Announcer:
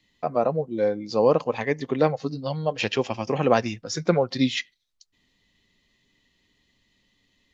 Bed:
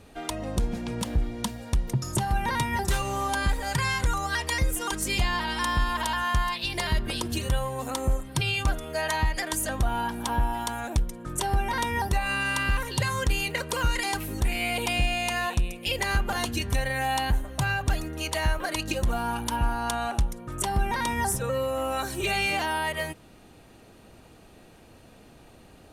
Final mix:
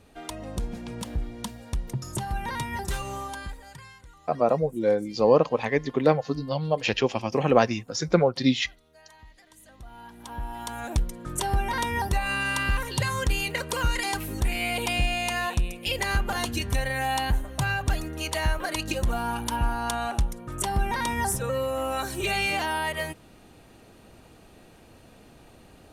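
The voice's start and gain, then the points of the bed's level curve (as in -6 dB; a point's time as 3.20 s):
4.05 s, +0.5 dB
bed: 3.14 s -4.5 dB
4.10 s -26 dB
9.52 s -26 dB
10.91 s 0 dB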